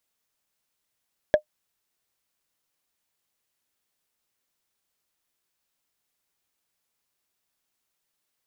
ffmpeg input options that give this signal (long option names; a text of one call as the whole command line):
ffmpeg -f lavfi -i "aevalsrc='0.398*pow(10,-3*t/0.09)*sin(2*PI*607*t)+0.133*pow(10,-3*t/0.027)*sin(2*PI*1673.5*t)+0.0447*pow(10,-3*t/0.012)*sin(2*PI*3280.2*t)+0.015*pow(10,-3*t/0.007)*sin(2*PI*5422.3*t)+0.00501*pow(10,-3*t/0.004)*sin(2*PI*8097.4*t)':duration=0.45:sample_rate=44100" out.wav